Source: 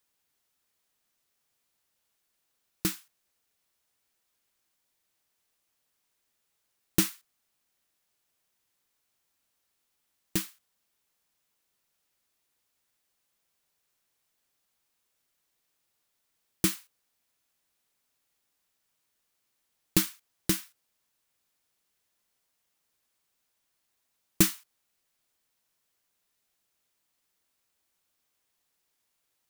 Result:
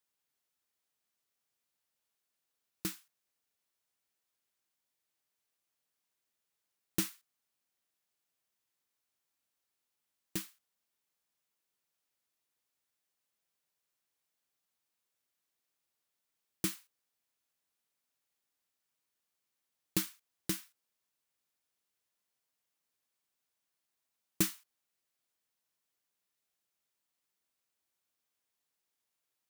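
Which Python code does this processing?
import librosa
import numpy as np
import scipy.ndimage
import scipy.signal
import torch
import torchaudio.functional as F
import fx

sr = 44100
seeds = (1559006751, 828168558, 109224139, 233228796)

y = fx.highpass(x, sr, hz=85.0, slope=6)
y = y * librosa.db_to_amplitude(-8.0)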